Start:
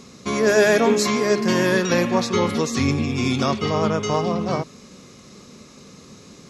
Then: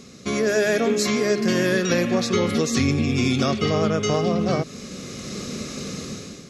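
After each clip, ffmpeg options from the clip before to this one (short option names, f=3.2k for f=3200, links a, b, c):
-af "dynaudnorm=f=150:g=7:m=13.5dB,equalizer=f=950:w=4.4:g=-13.5,acompressor=threshold=-20dB:ratio=2.5"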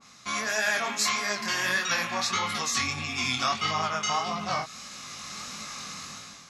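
-af "lowshelf=f=630:t=q:w=3:g=-12.5,flanger=delay=18.5:depth=6.5:speed=1.6,adynamicequalizer=threshold=0.0126:dfrequency=1900:dqfactor=0.7:tfrequency=1900:tqfactor=0.7:attack=5:release=100:ratio=0.375:range=1.5:mode=boostabove:tftype=highshelf"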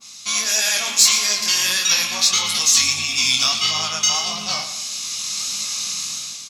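-filter_complex "[0:a]aexciter=amount=4.1:drive=7.9:freq=2.5k,asplit=2[a][b];[b]aecho=0:1:115|230|345|460:0.282|0.121|0.0521|0.0224[c];[a][c]amix=inputs=2:normalize=0,volume=-1.5dB"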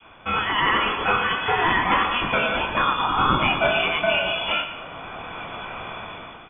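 -af "lowpass=f=3.1k:t=q:w=0.5098,lowpass=f=3.1k:t=q:w=0.6013,lowpass=f=3.1k:t=q:w=0.9,lowpass=f=3.1k:t=q:w=2.563,afreqshift=-3600,volume=5dB"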